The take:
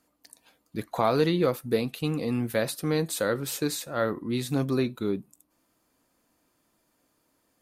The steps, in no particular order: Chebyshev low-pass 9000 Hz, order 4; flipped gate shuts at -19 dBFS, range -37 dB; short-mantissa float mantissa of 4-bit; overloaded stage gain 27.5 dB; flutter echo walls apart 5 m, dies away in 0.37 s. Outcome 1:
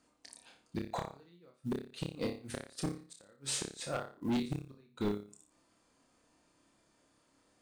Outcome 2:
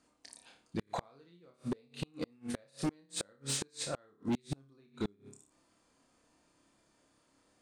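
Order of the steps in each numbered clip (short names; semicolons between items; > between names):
flipped gate > flutter echo > overloaded stage > Chebyshev low-pass > short-mantissa float; flutter echo > short-mantissa float > Chebyshev low-pass > flipped gate > overloaded stage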